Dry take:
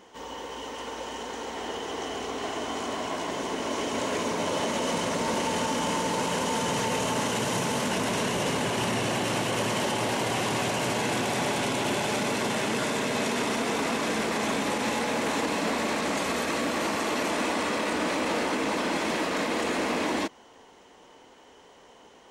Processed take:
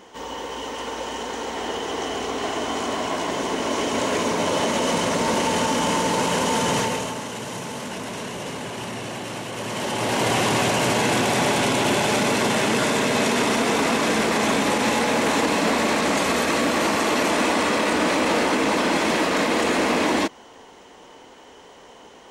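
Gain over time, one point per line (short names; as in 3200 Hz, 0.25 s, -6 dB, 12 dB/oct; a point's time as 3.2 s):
6.78 s +6 dB
7.21 s -4 dB
9.53 s -4 dB
10.26 s +7 dB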